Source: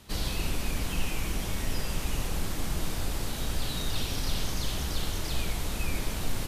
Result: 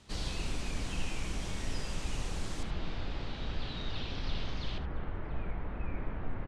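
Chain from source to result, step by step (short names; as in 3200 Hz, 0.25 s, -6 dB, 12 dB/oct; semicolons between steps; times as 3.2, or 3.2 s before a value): LPF 8500 Hz 24 dB/oct, from 2.63 s 4100 Hz, from 4.78 s 1900 Hz; echo 76 ms -12.5 dB; gain -5.5 dB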